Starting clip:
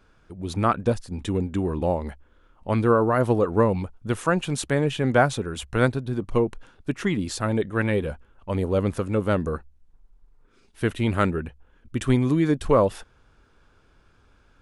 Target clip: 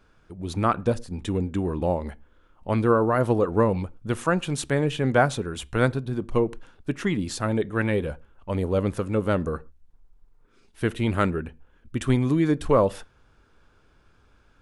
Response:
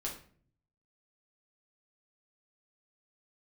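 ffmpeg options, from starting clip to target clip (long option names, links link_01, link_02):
-filter_complex "[0:a]asplit=2[link_01][link_02];[1:a]atrim=start_sample=2205,afade=type=out:start_time=0.19:duration=0.01,atrim=end_sample=8820,highshelf=frequency=4300:gain=-6.5[link_03];[link_02][link_03]afir=irnorm=-1:irlink=0,volume=-18dB[link_04];[link_01][link_04]amix=inputs=2:normalize=0,volume=-1.5dB"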